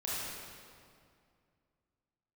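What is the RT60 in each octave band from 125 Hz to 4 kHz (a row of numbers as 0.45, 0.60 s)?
2.8, 2.7, 2.4, 2.2, 1.9, 1.7 s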